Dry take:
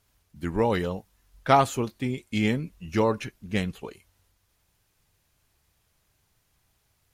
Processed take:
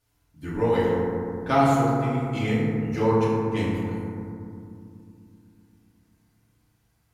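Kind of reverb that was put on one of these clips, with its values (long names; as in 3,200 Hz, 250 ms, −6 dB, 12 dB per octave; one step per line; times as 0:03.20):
feedback delay network reverb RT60 2.5 s, low-frequency decay 1.55×, high-frequency decay 0.3×, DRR −9 dB
level −9 dB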